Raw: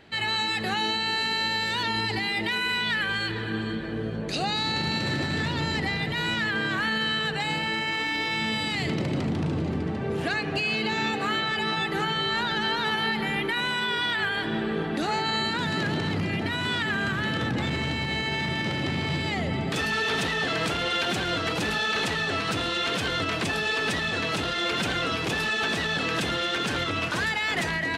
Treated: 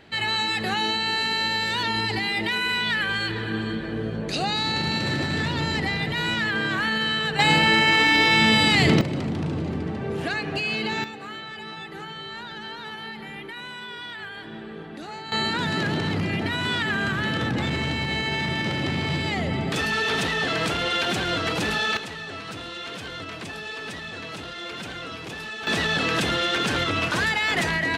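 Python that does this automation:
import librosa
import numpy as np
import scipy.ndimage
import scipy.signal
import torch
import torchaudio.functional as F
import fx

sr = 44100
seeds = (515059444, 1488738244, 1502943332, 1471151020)

y = fx.gain(x, sr, db=fx.steps((0.0, 2.0), (7.39, 10.0), (9.01, 0.0), (11.04, -10.0), (15.32, 2.0), (21.97, -8.0), (25.67, 3.5)))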